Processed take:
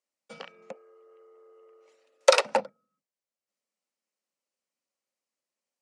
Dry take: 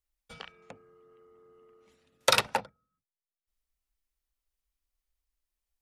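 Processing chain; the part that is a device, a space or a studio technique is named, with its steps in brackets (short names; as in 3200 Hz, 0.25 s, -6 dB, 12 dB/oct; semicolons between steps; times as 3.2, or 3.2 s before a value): 0.72–2.45 inverse Chebyshev high-pass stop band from 190 Hz, stop band 40 dB; television speaker (speaker cabinet 180–8700 Hz, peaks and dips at 220 Hz +5 dB, 550 Hz +10 dB, 1600 Hz -3 dB, 3500 Hz -6 dB); gain +2 dB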